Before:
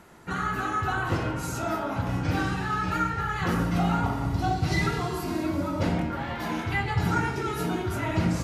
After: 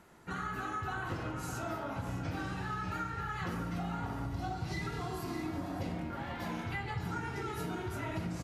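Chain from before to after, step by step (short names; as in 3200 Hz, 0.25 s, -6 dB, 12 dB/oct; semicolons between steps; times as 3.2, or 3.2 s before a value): spectral repair 5.19–5.94, 580–1900 Hz both; on a send: echo 0.605 s -11.5 dB; on the sum: compressor, threshold -26 dBFS, peak gain reduction 7 dB; gain -7.5 dB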